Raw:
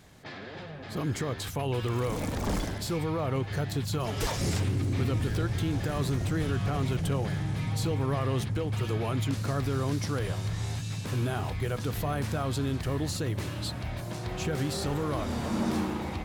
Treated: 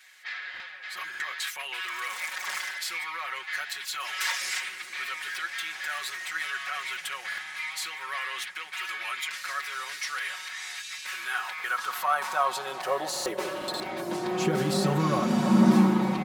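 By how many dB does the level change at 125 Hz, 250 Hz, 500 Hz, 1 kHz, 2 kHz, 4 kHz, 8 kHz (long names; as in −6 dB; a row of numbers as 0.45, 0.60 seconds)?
−8.0, +3.5, −1.0, +5.5, +10.0, +5.0, +3.5 decibels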